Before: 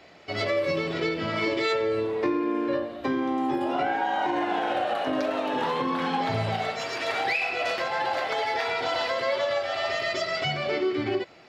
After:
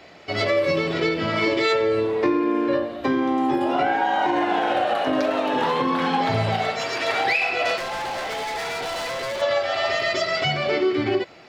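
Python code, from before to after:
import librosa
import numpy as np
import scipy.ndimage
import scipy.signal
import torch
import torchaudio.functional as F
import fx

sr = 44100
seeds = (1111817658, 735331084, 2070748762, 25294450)

y = fx.overload_stage(x, sr, gain_db=31.5, at=(7.77, 9.42))
y = y * 10.0 ** (5.0 / 20.0)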